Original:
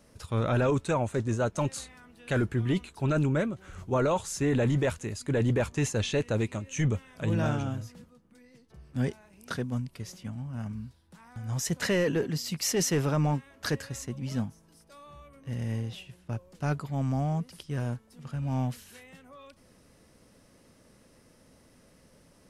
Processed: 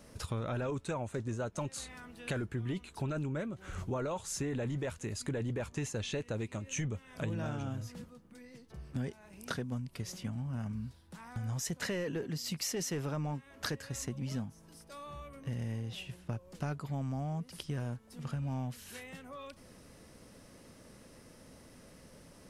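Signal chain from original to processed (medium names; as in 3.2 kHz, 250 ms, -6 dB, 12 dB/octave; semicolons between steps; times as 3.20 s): compression 6:1, threshold -38 dBFS, peak gain reduction 14.5 dB; trim +3.5 dB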